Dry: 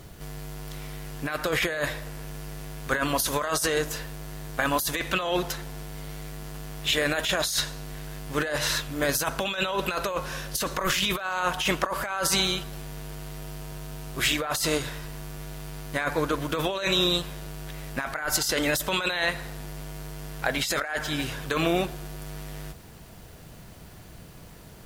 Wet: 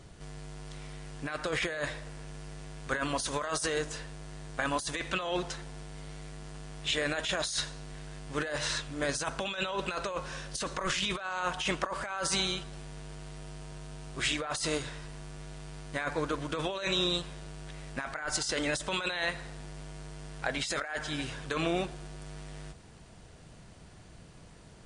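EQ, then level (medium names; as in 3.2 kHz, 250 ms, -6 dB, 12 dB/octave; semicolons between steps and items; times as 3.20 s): brick-wall FIR low-pass 10 kHz; -6.0 dB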